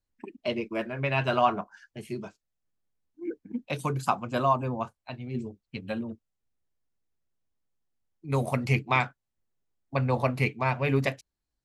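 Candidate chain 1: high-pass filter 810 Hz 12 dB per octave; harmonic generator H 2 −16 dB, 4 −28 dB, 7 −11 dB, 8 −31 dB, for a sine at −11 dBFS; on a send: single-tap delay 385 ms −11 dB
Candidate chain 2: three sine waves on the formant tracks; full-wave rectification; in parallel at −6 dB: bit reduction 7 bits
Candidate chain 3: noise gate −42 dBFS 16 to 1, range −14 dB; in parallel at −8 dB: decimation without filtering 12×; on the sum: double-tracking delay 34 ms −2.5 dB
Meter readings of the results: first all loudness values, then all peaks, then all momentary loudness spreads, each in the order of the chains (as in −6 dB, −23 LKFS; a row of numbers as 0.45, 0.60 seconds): −34.0, −30.0, −25.5 LKFS; −11.0, −4.5, −4.5 dBFS; 21, 18, 14 LU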